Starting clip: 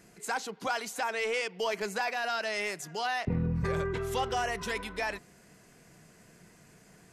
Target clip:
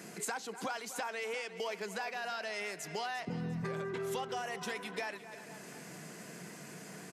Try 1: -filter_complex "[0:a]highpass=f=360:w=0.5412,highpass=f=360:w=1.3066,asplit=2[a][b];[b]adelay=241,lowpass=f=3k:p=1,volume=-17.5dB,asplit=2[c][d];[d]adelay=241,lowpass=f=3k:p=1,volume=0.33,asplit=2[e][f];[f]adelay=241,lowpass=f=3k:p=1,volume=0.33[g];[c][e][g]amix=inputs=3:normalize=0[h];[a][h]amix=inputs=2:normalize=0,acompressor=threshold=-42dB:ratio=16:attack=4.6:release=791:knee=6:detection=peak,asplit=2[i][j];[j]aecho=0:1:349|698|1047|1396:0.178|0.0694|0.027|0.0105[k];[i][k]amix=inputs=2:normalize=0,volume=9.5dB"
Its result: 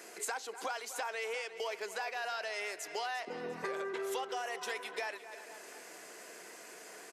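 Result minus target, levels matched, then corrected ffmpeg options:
125 Hz band -19.0 dB
-filter_complex "[0:a]highpass=f=150:w=0.5412,highpass=f=150:w=1.3066,asplit=2[a][b];[b]adelay=241,lowpass=f=3k:p=1,volume=-17.5dB,asplit=2[c][d];[d]adelay=241,lowpass=f=3k:p=1,volume=0.33,asplit=2[e][f];[f]adelay=241,lowpass=f=3k:p=1,volume=0.33[g];[c][e][g]amix=inputs=3:normalize=0[h];[a][h]amix=inputs=2:normalize=0,acompressor=threshold=-42dB:ratio=16:attack=4.6:release=791:knee=6:detection=peak,asplit=2[i][j];[j]aecho=0:1:349|698|1047|1396:0.178|0.0694|0.027|0.0105[k];[i][k]amix=inputs=2:normalize=0,volume=9.5dB"

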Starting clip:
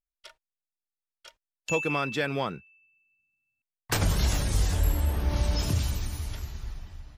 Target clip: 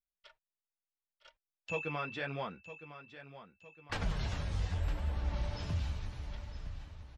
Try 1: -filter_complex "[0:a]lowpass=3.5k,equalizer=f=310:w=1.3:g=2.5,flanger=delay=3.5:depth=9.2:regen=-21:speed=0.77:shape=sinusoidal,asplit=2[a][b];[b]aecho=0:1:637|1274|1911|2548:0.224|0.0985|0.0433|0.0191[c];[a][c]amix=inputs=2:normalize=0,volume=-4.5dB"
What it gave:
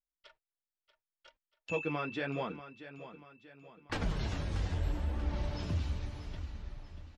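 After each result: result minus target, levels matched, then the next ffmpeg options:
echo 0.323 s early; 250 Hz band +3.5 dB
-filter_complex "[0:a]lowpass=3.5k,equalizer=f=310:w=1.3:g=2.5,flanger=delay=3.5:depth=9.2:regen=-21:speed=0.77:shape=sinusoidal,asplit=2[a][b];[b]aecho=0:1:960|1920|2880|3840:0.224|0.0985|0.0433|0.0191[c];[a][c]amix=inputs=2:normalize=0,volume=-4.5dB"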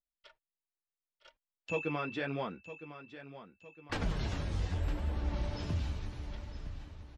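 250 Hz band +4.0 dB
-filter_complex "[0:a]lowpass=3.5k,equalizer=f=310:w=1.3:g=-5.5,flanger=delay=3.5:depth=9.2:regen=-21:speed=0.77:shape=sinusoidal,asplit=2[a][b];[b]aecho=0:1:960|1920|2880|3840:0.224|0.0985|0.0433|0.0191[c];[a][c]amix=inputs=2:normalize=0,volume=-4.5dB"

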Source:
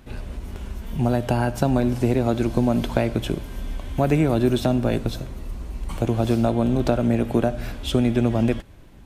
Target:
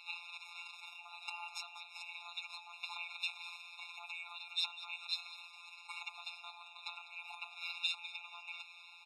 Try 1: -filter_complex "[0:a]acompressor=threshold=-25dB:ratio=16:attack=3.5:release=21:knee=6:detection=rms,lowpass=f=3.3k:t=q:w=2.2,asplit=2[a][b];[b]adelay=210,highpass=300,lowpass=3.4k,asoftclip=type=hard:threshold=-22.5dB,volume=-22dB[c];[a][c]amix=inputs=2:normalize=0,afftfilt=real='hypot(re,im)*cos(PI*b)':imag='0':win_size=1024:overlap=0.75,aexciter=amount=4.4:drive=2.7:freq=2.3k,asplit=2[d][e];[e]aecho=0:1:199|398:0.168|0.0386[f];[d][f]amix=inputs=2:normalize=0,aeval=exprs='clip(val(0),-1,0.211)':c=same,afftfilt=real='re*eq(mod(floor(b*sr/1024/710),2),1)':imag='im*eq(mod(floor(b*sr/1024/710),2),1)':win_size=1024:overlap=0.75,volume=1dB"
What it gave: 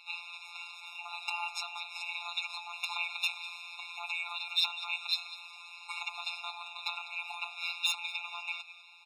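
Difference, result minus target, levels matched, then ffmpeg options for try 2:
compressor: peak gain reduction -10 dB
-filter_complex "[0:a]acompressor=threshold=-35.5dB:ratio=16:attack=3.5:release=21:knee=6:detection=rms,lowpass=f=3.3k:t=q:w=2.2,asplit=2[a][b];[b]adelay=210,highpass=300,lowpass=3.4k,asoftclip=type=hard:threshold=-22.5dB,volume=-22dB[c];[a][c]amix=inputs=2:normalize=0,afftfilt=real='hypot(re,im)*cos(PI*b)':imag='0':win_size=1024:overlap=0.75,aexciter=amount=4.4:drive=2.7:freq=2.3k,asplit=2[d][e];[e]aecho=0:1:199|398:0.168|0.0386[f];[d][f]amix=inputs=2:normalize=0,aeval=exprs='clip(val(0),-1,0.211)':c=same,afftfilt=real='re*eq(mod(floor(b*sr/1024/710),2),1)':imag='im*eq(mod(floor(b*sr/1024/710),2),1)':win_size=1024:overlap=0.75,volume=1dB"

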